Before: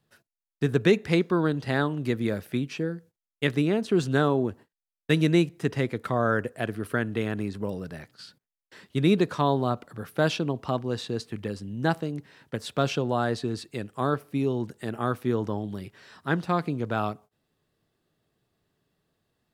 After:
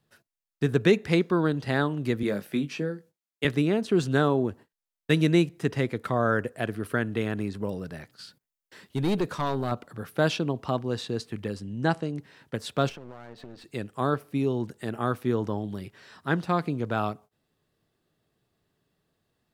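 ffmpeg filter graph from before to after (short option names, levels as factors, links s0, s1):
-filter_complex "[0:a]asettb=1/sr,asplit=3[s0][s1][s2];[s0]atrim=end=2.234[s3];[s1]atrim=start=2.23:end=3.45,asetpts=PTS-STARTPTS,afade=t=in:d=0.004:c=qsin,afade=t=out:st=1.216:d=0.004:c=qsin,highpass=f=140:w=0.5412,highpass=f=140:w=1.3066,asplit=2[s4][s5];[s5]adelay=20,volume=0.376[s6];[s4][s6]amix=inputs=2:normalize=0,atrim=end_sample=53802[s7];[s2]atrim=start=3.446[s8];[s3][s7]acrossfade=d=0.004:c1=hsin:c2=qsin[s9];[s9][s8]acrossfade=d=0.004:c1=qsin:c2=hsin,asettb=1/sr,asplit=3[s10][s11][s12];[s10]atrim=end=8.104[s13];[s11]atrim=start=8.1:end=9.72,asetpts=PTS-STARTPTS,afade=t=in:d=0.004:c=qsin,afade=t=out:st=1.616:d=0.004:c=qsin,highshelf=f=9500:g=7,aeval=exprs='(tanh(10*val(0)+0.25)-tanh(0.25))/10':c=same[s14];[s12]atrim=start=9.716[s15];[s13][s14]acrossfade=d=0.004:c1=hsin:c2=qsin[s16];[s16][s15]acrossfade=d=0.004:c1=qsin:c2=hsin,asettb=1/sr,asplit=3[s17][s18][s19];[s17]atrim=end=11.624[s20];[s18]atrim=start=11.62:end=12.18,asetpts=PTS-STARTPTS,afade=t=in:d=0.004:c=qsin,afade=t=out:st=0.556:d=0.004:c=qsin,lowpass=f=9600:w=0.5412,lowpass=f=9600:w=1.3066,bandreject=f=3600:w=18[s21];[s19]atrim=start=12.176[s22];[s20][s21]acrossfade=d=0.004:c1=hsin:c2=qsin[s23];[s23][s22]acrossfade=d=0.004:c1=qsin:c2=hsin,asettb=1/sr,asplit=3[s24][s25][s26];[s24]atrim=end=12.894[s27];[s25]atrim=start=12.89:end=13.64,asetpts=PTS-STARTPTS,afade=t=in:d=0.004:c=qsin,afade=t=out:st=0.746:d=0.004:c=qsin,highpass=160,lowpass=3000,acompressor=threshold=0.0158:ratio=20:attack=3.2:release=140:knee=1:detection=peak,aeval=exprs='clip(val(0),-1,0.00282)':c=same[s28];[s26]atrim=start=13.636[s29];[s27][s28]acrossfade=d=0.004:c1=hsin:c2=qsin[s30];[s30][s29]acrossfade=d=0.004:c1=qsin:c2=hsin"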